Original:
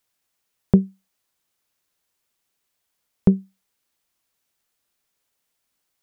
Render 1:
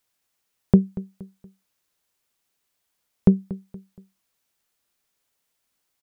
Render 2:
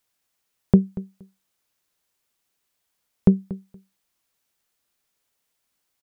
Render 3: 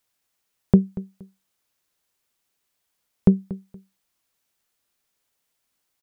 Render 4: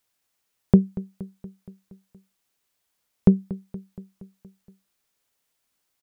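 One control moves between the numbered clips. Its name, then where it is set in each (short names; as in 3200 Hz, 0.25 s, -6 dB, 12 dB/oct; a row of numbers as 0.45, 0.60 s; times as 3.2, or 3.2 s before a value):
feedback echo, feedback: 39, 16, 24, 62%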